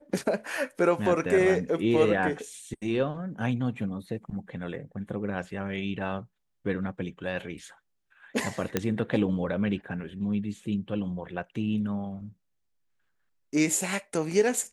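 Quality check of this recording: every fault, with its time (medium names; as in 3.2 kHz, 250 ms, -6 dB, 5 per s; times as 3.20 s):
8.77 s: pop -10 dBFS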